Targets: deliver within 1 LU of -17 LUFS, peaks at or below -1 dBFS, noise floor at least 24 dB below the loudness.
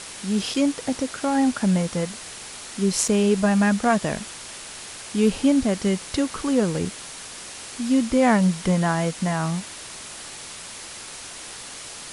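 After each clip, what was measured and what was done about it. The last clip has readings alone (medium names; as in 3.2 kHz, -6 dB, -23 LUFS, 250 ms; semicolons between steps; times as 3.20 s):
dropouts 2; longest dropout 3.7 ms; noise floor -38 dBFS; noise floor target -47 dBFS; loudness -22.5 LUFS; peak level -5.0 dBFS; loudness target -17.0 LUFS
-> interpolate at 0.54/3.08 s, 3.7 ms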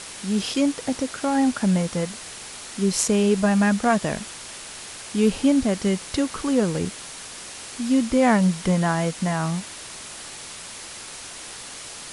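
dropouts 0; noise floor -38 dBFS; noise floor target -47 dBFS
-> noise print and reduce 9 dB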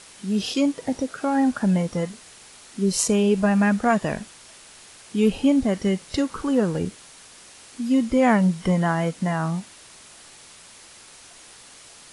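noise floor -47 dBFS; loudness -22.5 LUFS; peak level -5.0 dBFS; loudness target -17.0 LUFS
-> trim +5.5 dB; peak limiter -1 dBFS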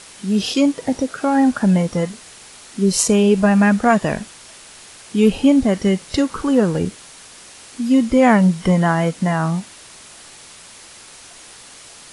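loudness -17.0 LUFS; peak level -1.0 dBFS; noise floor -42 dBFS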